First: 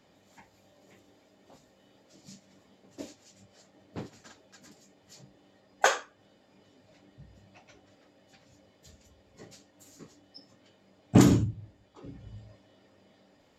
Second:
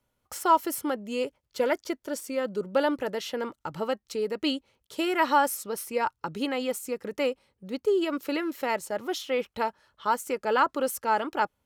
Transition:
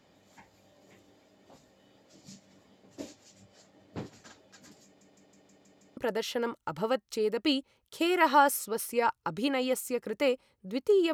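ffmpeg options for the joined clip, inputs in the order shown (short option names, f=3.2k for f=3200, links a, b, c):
-filter_complex "[0:a]apad=whole_dur=11.13,atrim=end=11.13,asplit=7[a][b][c][d][e][f][g];[a]atrim=end=5.012[h];[b]atrim=start=4.848:end=5.012[i];[c]atrim=start=4.848:end=5.012[j];[d]atrim=start=4.848:end=5.012[k];[e]atrim=start=4.848:end=5.012[l];[f]atrim=start=4.848:end=5.012[m];[g]atrim=start=4.848:end=5.012[n];[1:a]atrim=start=2.948:end=8.11[o];[h][i]acrossfade=d=0.004:c1=hsin:c2=hsin[p];[p][j]acrossfade=d=0.004:c1=hsin:c2=hsin[q];[q][k]acrossfade=d=0.004:c1=hsin:c2=hsin[r];[r][l]acrossfade=d=0.004:c1=hsin:c2=hsin[s];[s][m]acrossfade=d=0.004:c1=hsin:c2=hsin[t];[t][n]acrossfade=d=0.004:c1=hsin:c2=hsin[u];[u][o]acrossfade=d=0.004:c1=hsin:c2=hsin"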